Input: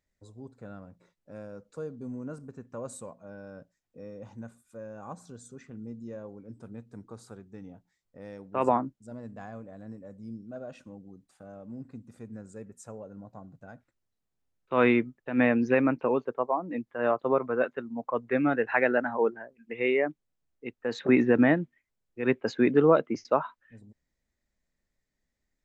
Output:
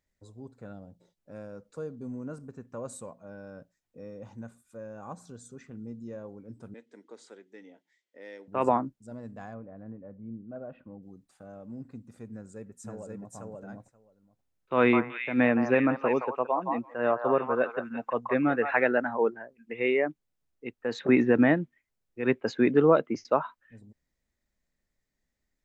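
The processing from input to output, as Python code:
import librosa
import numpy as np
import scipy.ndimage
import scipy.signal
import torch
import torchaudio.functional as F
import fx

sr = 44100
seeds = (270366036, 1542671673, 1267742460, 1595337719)

y = fx.spec_box(x, sr, start_s=0.73, length_s=0.45, low_hz=920.0, high_hz=2800.0, gain_db=-11)
y = fx.cabinet(y, sr, low_hz=300.0, low_slope=24, high_hz=8000.0, hz=(750.0, 1200.0, 2000.0, 3200.0), db=(-6, -9, 10, 8), at=(6.74, 8.48))
y = fx.gaussian_blur(y, sr, sigma=3.9, at=(9.53, 11.01), fade=0.02)
y = fx.echo_throw(y, sr, start_s=12.31, length_s=1.03, ms=530, feedback_pct=10, wet_db=-0.5)
y = fx.echo_stepped(y, sr, ms=169, hz=960.0, octaves=1.4, feedback_pct=70, wet_db=-1.5, at=(14.76, 18.88))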